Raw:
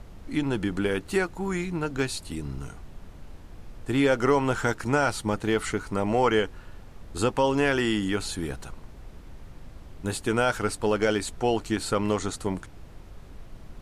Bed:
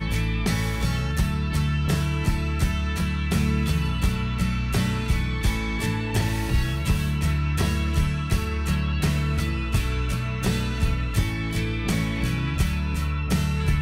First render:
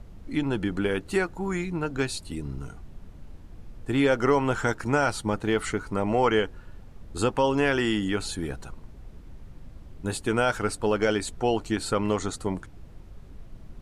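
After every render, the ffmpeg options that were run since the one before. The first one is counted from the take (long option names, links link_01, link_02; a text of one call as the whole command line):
ffmpeg -i in.wav -af "afftdn=noise_reduction=6:noise_floor=-46" out.wav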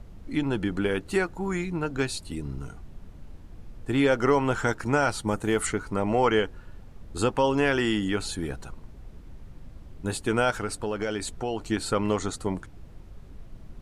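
ffmpeg -i in.wav -filter_complex "[0:a]asettb=1/sr,asplit=3[link_01][link_02][link_03];[link_01]atrim=end=5.274[link_04];[link_02]atrim=start=5.27:end=5.67,asetpts=PTS-STARTPTS,afade=type=in:duration=0.004:curve=qsin,afade=type=out:start_time=0.396:duration=0.004:curve=qsin,highshelf=frequency=6000:width_type=q:width=1.5:gain=8[link_05];[link_03]atrim=start=5.666[link_06];[link_04][link_05]acrossfade=duration=0.004:curve1=hsin:curve2=qsin[link_07];[link_07][link_06]acrossfade=duration=0.004:curve1=qsin:curve2=hsin,asettb=1/sr,asplit=3[link_08][link_09][link_10];[link_08]atrim=end=10.504[link_11];[link_09]atrim=start=10.5:end=11.61,asetpts=PTS-STARTPTS,afade=type=in:duration=0.004:curve=qsin,afade=type=out:start_time=1.106:duration=0.004:curve=qsin,acompressor=threshold=-27dB:ratio=2.5:attack=3.2:release=140:knee=1:detection=peak[link_12];[link_10]atrim=start=11.606[link_13];[link_11][link_12]acrossfade=duration=0.004:curve1=hsin:curve2=qsin[link_14];[link_14][link_13]acrossfade=duration=0.004:curve1=qsin:curve2=hsin" out.wav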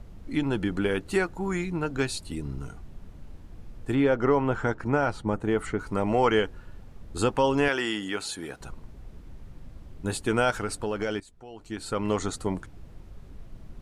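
ffmpeg -i in.wav -filter_complex "[0:a]asplit=3[link_01][link_02][link_03];[link_01]afade=type=out:start_time=3.94:duration=0.02[link_04];[link_02]lowpass=frequency=1400:poles=1,afade=type=in:start_time=3.94:duration=0.02,afade=type=out:start_time=5.78:duration=0.02[link_05];[link_03]afade=type=in:start_time=5.78:duration=0.02[link_06];[link_04][link_05][link_06]amix=inputs=3:normalize=0,asettb=1/sr,asplit=3[link_07][link_08][link_09];[link_07]atrim=end=7.684[link_10];[link_08]atrim=start=7.68:end=8.61,asetpts=PTS-STARTPTS,afade=type=in:duration=0.004:curve=qsin,afade=type=out:start_time=0.926:duration=0.004:curve=qsin,highpass=frequency=490:poles=1[link_11];[link_09]atrim=start=8.606[link_12];[link_10][link_11]acrossfade=duration=0.004:curve1=hsin:curve2=qsin[link_13];[link_13][link_12]acrossfade=duration=0.004:curve1=qsin:curve2=hsin,asplit=2[link_14][link_15];[link_14]atrim=end=11.2,asetpts=PTS-STARTPTS,afade=type=out:start_time=11.196:duration=0.004:curve=hsin:silence=0.112202[link_16];[link_15]atrim=start=11.2,asetpts=PTS-STARTPTS,afade=type=in:duration=0.97:curve=qua:silence=0.112202[link_17];[link_16][link_17]concat=n=2:v=0:a=1" out.wav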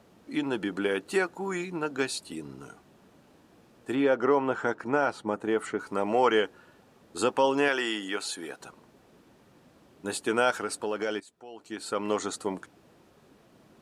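ffmpeg -i in.wav -af "highpass=280,bandreject=frequency=2100:width=19" out.wav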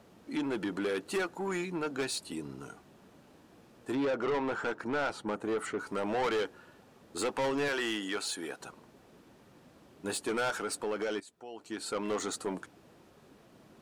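ffmpeg -i in.wav -af "asoftclip=type=tanh:threshold=-27dB" out.wav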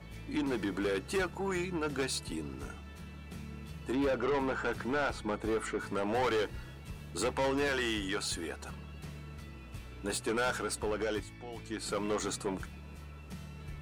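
ffmpeg -i in.wav -i bed.wav -filter_complex "[1:a]volume=-22.5dB[link_01];[0:a][link_01]amix=inputs=2:normalize=0" out.wav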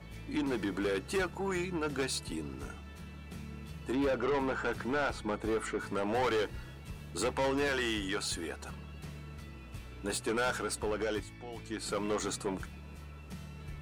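ffmpeg -i in.wav -af anull out.wav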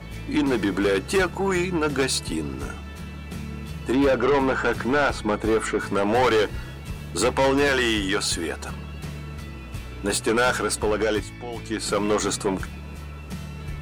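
ffmpeg -i in.wav -af "volume=11dB" out.wav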